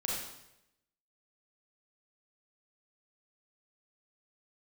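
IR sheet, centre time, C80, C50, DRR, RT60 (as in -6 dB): 66 ms, 3.0 dB, -0.5 dB, -4.0 dB, 0.85 s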